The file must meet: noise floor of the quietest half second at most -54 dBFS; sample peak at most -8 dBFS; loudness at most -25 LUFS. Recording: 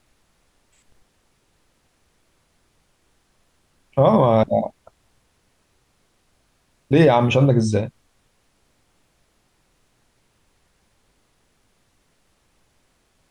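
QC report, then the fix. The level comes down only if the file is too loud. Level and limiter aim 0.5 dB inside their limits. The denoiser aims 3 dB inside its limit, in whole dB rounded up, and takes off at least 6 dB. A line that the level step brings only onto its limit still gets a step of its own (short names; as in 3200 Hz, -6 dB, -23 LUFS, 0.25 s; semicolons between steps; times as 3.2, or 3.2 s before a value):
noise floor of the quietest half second -64 dBFS: OK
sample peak -5.5 dBFS: fail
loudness -18.0 LUFS: fail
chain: gain -7.5 dB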